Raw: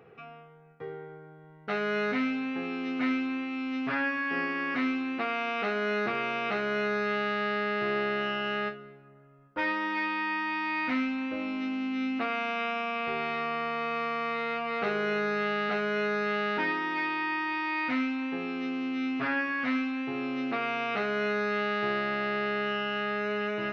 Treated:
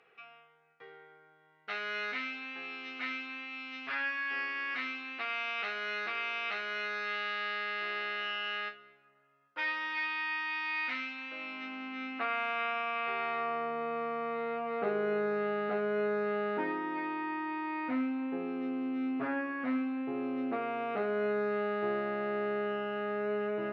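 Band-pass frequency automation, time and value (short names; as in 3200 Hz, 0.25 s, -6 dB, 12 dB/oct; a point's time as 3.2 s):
band-pass, Q 0.74
11.3 s 3200 Hz
11.8 s 1400 Hz
13.16 s 1400 Hz
13.74 s 450 Hz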